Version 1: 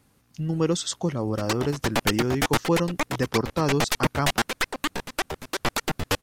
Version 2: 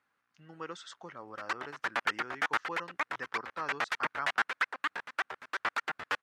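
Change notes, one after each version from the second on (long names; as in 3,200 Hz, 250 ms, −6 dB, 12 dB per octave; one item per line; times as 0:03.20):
speech −4.0 dB
master: add resonant band-pass 1,500 Hz, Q 2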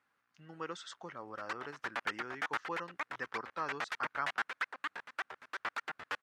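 background −6.0 dB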